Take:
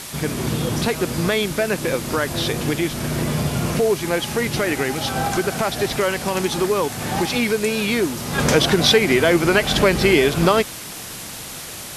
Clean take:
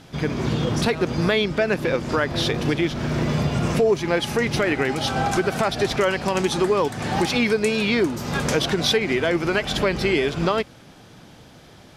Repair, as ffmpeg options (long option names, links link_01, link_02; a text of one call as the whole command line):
ffmpeg -i in.wav -af "adeclick=threshold=4,afwtdn=0.025,asetnsamples=nb_out_samples=441:pad=0,asendcmd='8.38 volume volume -5.5dB',volume=0dB" out.wav